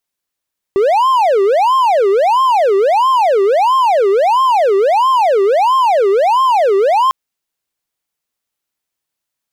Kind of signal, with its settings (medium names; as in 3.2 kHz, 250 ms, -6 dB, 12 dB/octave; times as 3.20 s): siren wail 387–1060 Hz 1.5 per s triangle -6.5 dBFS 6.35 s